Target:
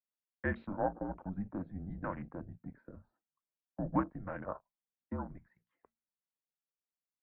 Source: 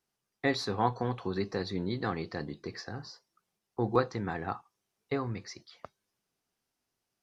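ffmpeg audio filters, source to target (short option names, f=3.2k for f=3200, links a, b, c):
-af "bandreject=f=60:t=h:w=6,bandreject=f=120:t=h:w=6,bandreject=f=180:t=h:w=6,bandreject=f=240:t=h:w=6,bandreject=f=300:t=h:w=6,bandreject=f=360:t=h:w=6,bandreject=f=420:t=h:w=6,afwtdn=0.0112,highpass=f=270:t=q:w=0.5412,highpass=f=270:t=q:w=1.307,lowpass=f=2.4k:t=q:w=0.5176,lowpass=f=2.4k:t=q:w=0.7071,lowpass=f=2.4k:t=q:w=1.932,afreqshift=-190,volume=-4dB"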